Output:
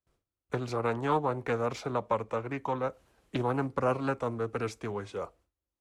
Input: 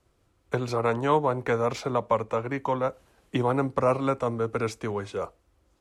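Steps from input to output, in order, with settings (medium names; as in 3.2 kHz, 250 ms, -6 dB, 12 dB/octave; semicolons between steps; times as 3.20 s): gate with hold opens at -55 dBFS; loudspeaker Doppler distortion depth 0.42 ms; trim -5 dB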